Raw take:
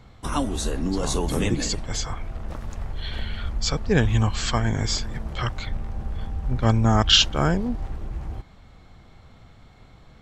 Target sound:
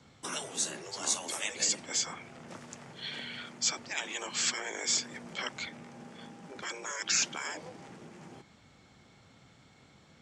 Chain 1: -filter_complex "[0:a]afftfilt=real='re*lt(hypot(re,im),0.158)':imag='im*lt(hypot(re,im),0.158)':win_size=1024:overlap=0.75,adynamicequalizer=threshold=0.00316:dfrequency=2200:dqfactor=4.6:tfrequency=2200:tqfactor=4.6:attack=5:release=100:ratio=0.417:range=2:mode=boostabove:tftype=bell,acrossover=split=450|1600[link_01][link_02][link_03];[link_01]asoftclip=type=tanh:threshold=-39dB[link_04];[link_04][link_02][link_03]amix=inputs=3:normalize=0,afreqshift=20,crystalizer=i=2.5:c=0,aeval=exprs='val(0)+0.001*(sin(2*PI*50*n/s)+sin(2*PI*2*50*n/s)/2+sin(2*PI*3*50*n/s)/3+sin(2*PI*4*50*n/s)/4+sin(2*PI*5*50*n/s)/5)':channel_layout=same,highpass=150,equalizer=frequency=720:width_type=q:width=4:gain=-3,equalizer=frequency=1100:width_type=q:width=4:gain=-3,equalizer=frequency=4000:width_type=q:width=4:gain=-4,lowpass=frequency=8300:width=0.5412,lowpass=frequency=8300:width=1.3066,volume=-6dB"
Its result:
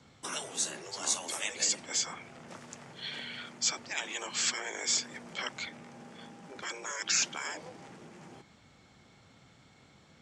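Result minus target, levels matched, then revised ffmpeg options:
soft clipping: distortion +11 dB
-filter_complex "[0:a]afftfilt=real='re*lt(hypot(re,im),0.158)':imag='im*lt(hypot(re,im),0.158)':win_size=1024:overlap=0.75,adynamicequalizer=threshold=0.00316:dfrequency=2200:dqfactor=4.6:tfrequency=2200:tqfactor=4.6:attack=5:release=100:ratio=0.417:range=2:mode=boostabove:tftype=bell,acrossover=split=450|1600[link_01][link_02][link_03];[link_01]asoftclip=type=tanh:threshold=-30.5dB[link_04];[link_04][link_02][link_03]amix=inputs=3:normalize=0,afreqshift=20,crystalizer=i=2.5:c=0,aeval=exprs='val(0)+0.001*(sin(2*PI*50*n/s)+sin(2*PI*2*50*n/s)/2+sin(2*PI*3*50*n/s)/3+sin(2*PI*4*50*n/s)/4+sin(2*PI*5*50*n/s)/5)':channel_layout=same,highpass=150,equalizer=frequency=720:width_type=q:width=4:gain=-3,equalizer=frequency=1100:width_type=q:width=4:gain=-3,equalizer=frequency=4000:width_type=q:width=4:gain=-4,lowpass=frequency=8300:width=0.5412,lowpass=frequency=8300:width=1.3066,volume=-6dB"

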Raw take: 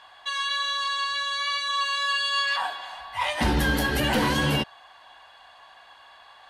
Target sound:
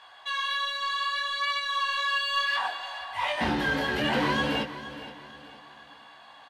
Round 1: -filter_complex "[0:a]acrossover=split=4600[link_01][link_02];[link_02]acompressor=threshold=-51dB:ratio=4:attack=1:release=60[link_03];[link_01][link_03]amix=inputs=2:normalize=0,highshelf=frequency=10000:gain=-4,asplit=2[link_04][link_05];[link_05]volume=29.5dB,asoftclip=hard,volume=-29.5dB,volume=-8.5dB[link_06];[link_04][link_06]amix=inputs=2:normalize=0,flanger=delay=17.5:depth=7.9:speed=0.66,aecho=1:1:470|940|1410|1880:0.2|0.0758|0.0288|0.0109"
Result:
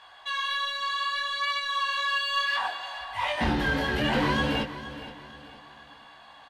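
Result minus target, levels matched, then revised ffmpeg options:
125 Hz band +4.0 dB
-filter_complex "[0:a]acrossover=split=4600[link_01][link_02];[link_02]acompressor=threshold=-51dB:ratio=4:attack=1:release=60[link_03];[link_01][link_03]amix=inputs=2:normalize=0,highpass=frequency=170:poles=1,highshelf=frequency=10000:gain=-4,asplit=2[link_04][link_05];[link_05]volume=29.5dB,asoftclip=hard,volume=-29.5dB,volume=-8.5dB[link_06];[link_04][link_06]amix=inputs=2:normalize=0,flanger=delay=17.5:depth=7.9:speed=0.66,aecho=1:1:470|940|1410|1880:0.2|0.0758|0.0288|0.0109"

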